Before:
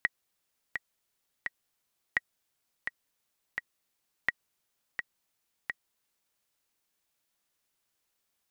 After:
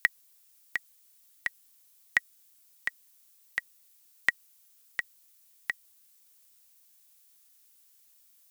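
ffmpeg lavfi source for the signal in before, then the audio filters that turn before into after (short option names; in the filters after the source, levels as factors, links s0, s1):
-f lavfi -i "aevalsrc='pow(10,(-12-7*gte(mod(t,3*60/85),60/85))/20)*sin(2*PI*1910*mod(t,60/85))*exp(-6.91*mod(t,60/85)/0.03)':d=6.35:s=44100"
-af "crystalizer=i=5:c=0"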